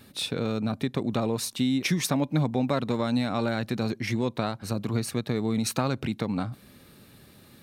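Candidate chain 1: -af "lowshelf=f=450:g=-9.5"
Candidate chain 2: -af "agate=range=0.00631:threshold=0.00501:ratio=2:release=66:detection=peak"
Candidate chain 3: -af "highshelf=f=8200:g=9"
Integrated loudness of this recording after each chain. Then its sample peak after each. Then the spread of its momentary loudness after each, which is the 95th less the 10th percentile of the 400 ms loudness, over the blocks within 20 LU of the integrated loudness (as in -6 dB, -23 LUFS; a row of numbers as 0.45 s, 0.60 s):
-32.5 LUFS, -28.0 LUFS, -27.5 LUFS; -14.0 dBFS, -10.0 dBFS, -10.0 dBFS; 6 LU, 5 LU, 5 LU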